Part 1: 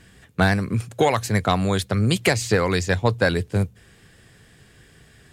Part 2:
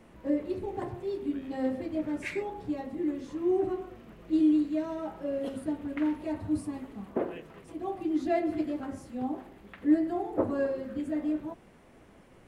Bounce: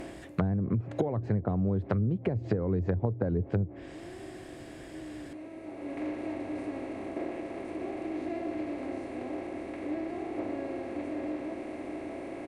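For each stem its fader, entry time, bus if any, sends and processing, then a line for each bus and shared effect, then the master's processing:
0.0 dB, 0.00 s, no send, no echo send, no processing
−16.0 dB, 0.00 s, no send, echo send −8 dB, compressor on every frequency bin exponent 0.2; pitch vibrato 0.41 Hz 7.4 cents; automatic ducking −22 dB, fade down 0.50 s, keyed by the first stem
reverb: not used
echo: single-tap delay 611 ms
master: treble cut that deepens with the level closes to 400 Hz, closed at −17.5 dBFS; downward compressor 6 to 1, threshold −25 dBFS, peak gain reduction 9.5 dB

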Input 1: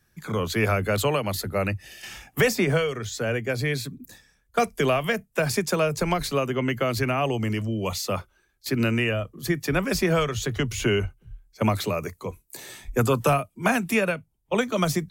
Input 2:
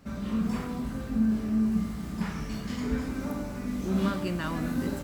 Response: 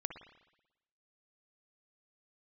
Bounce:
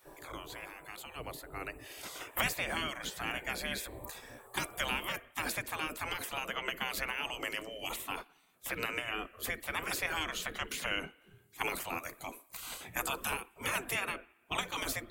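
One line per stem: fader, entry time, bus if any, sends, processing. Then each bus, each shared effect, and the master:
0:01.44 −15 dB → 0:02.22 −3 dB, 0.00 s, send −15 dB, mains-hum notches 60/120/180 Hz; multiband upward and downward compressor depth 70%
−0.5 dB, 0.00 s, no send, Chebyshev band-stop filter 1,000–7,900 Hz, order 4; automatic ducking −8 dB, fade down 0.35 s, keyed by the first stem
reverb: on, RT60 0.95 s, pre-delay 54 ms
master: gate on every frequency bin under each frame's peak −15 dB weak; parametric band 5,600 Hz −7 dB 0.61 octaves

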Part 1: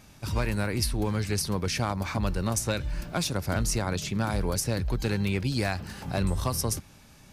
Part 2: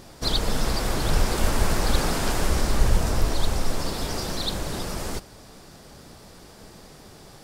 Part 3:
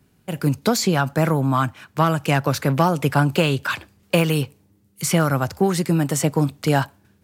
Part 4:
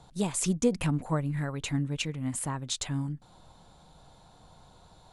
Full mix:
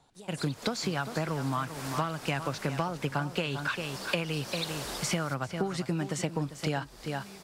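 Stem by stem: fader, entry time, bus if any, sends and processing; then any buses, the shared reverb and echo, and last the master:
−12.5 dB, 2.00 s, no send, no echo send, comb filter 5 ms, depth 86%; downward compressor, threshold −35 dBFS, peak gain reduction 14 dB
−15.5 dB, 0.15 s, no send, no echo send, automatic gain control gain up to 16 dB; high-pass filter 660 Hz 6 dB per octave
+2.5 dB, 0.00 s, no send, echo send −13.5 dB, Bessel low-pass filter 4,500 Hz, order 2; tilt shelving filter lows −3.5 dB, about 1,400 Hz; expander for the loud parts 1.5 to 1, over −40 dBFS
−8.0 dB, 0.00 s, no send, no echo send, bass and treble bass −13 dB, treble +1 dB; downward compressor, threshold −39 dBFS, peak gain reduction 15.5 dB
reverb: not used
echo: single-tap delay 396 ms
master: downward compressor 6 to 1, threshold −28 dBFS, peak gain reduction 15 dB

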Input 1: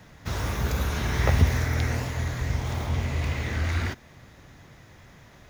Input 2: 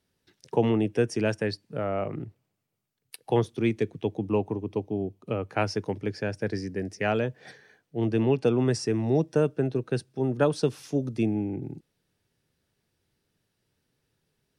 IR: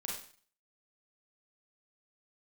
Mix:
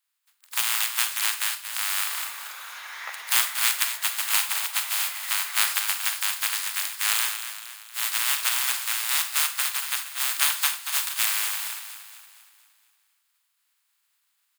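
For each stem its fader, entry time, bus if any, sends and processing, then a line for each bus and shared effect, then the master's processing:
−4.0 dB, 1.80 s, no send, no echo send, no processing
−1.5 dB, 0.00 s, send −4.5 dB, echo send −7 dB, compressing power law on the bin magnitudes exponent 0.1; speech leveller 2 s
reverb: on, RT60 0.45 s, pre-delay 32 ms
echo: repeating echo 233 ms, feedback 50%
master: high-pass filter 1,000 Hz 24 dB per octave; parametric band 5,800 Hz −7 dB 0.22 octaves

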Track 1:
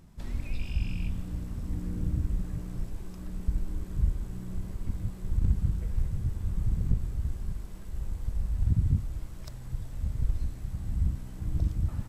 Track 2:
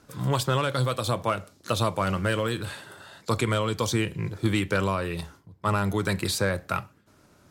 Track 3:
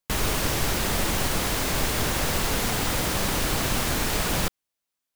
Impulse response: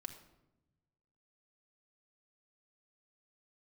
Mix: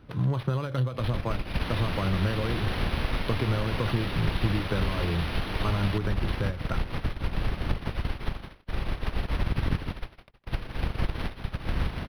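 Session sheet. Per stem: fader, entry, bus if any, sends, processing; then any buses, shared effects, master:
−2.5 dB, 0.80 s, bus A, no send, echo send −9.5 dB, compressing power law on the bin magnitudes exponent 0.31; reverb reduction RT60 1.6 s; noise gate −42 dBFS, range −34 dB
−3.0 dB, 0.00 s, bus A, no send, no echo send, high-shelf EQ 7,700 Hz +11.5 dB; every ending faded ahead of time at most 190 dB per second
−15.5 dB, 1.50 s, no bus, no send, no echo send, flat-topped bell 6,300 Hz +11.5 dB 2.6 octaves
bus A: 0.0 dB, low-shelf EQ 86 Hz +10 dB; downward compressor 10 to 1, threshold −29 dBFS, peak gain reduction 13.5 dB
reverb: not used
echo: single-tap delay 159 ms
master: low-shelf EQ 450 Hz +8 dB; linearly interpolated sample-rate reduction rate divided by 6×

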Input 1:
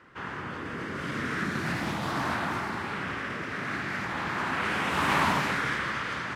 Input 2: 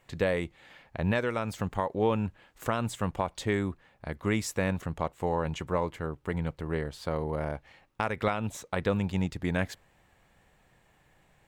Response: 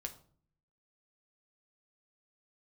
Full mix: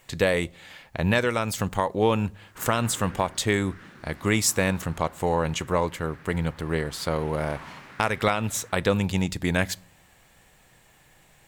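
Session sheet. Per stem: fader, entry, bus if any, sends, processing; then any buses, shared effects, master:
0:03.07 −9 dB → 0:03.49 −21.5 dB, 2.40 s, send −3.5 dB, no processing
+3.0 dB, 0.00 s, send −10.5 dB, high-shelf EQ 3,400 Hz +11.5 dB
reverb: on, RT60 0.50 s, pre-delay 6 ms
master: no processing

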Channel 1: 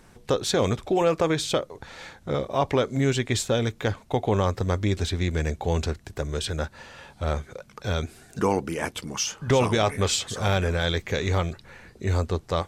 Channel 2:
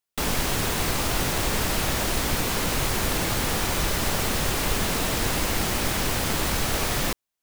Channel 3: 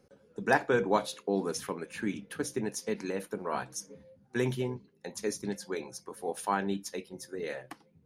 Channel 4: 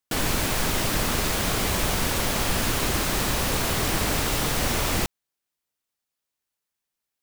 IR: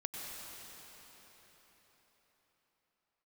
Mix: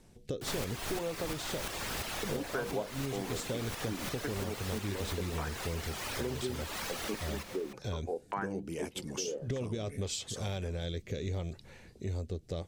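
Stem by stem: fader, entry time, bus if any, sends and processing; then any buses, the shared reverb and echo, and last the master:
−2.5 dB, 0.00 s, no send, parametric band 1,400 Hz −10 dB 1.3 octaves; rotating-speaker cabinet horn 0.75 Hz
−14.5 dB, 0.30 s, send −4 dB, mid-hump overdrive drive 14 dB, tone 6,900 Hz, clips at −11 dBFS; reverb reduction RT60 1.8 s
+0.5 dB, 1.85 s, no send, auto-filter low-pass saw down 1.7 Hz 260–2,500 Hz
+2.5 dB, 0.30 s, no send, tremolo with a ramp in dB swelling 2.9 Hz, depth 27 dB; automatic ducking −9 dB, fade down 1.90 s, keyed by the first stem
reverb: on, RT60 4.7 s, pre-delay 88 ms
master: downward compressor 4 to 1, threshold −34 dBFS, peak gain reduction 15.5 dB

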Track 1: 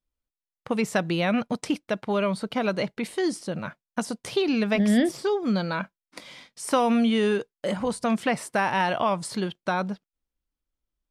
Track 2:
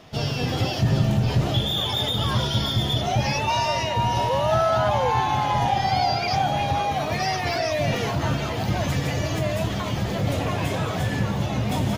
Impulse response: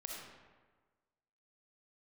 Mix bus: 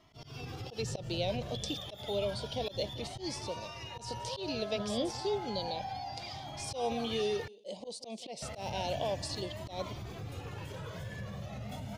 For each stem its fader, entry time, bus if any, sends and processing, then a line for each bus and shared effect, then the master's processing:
+2.0 dB, 0.00 s, no send, echo send −20.5 dB, Chebyshev band-stop filter 480–4,300 Hz, order 2; three-way crossover with the lows and the highs turned down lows −22 dB, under 540 Hz, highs −21 dB, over 6,500 Hz
−11.0 dB, 0.00 s, muted 0:07.48–0:08.42, no send, no echo send, brickwall limiter −18.5 dBFS, peak gain reduction 8.5 dB; flanger whose copies keep moving one way rising 0.31 Hz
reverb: not used
echo: repeating echo 179 ms, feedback 25%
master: volume swells 121 ms

